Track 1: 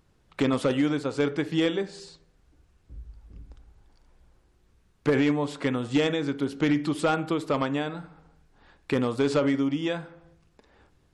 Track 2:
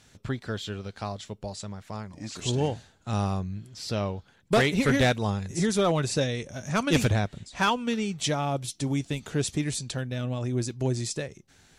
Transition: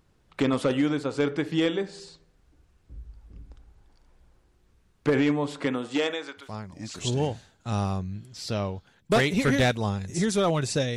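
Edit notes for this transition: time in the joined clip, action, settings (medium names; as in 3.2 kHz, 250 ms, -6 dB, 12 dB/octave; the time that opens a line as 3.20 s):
track 1
5.65–6.54 s: high-pass 140 Hz -> 1.5 kHz
6.45 s: go over to track 2 from 1.86 s, crossfade 0.18 s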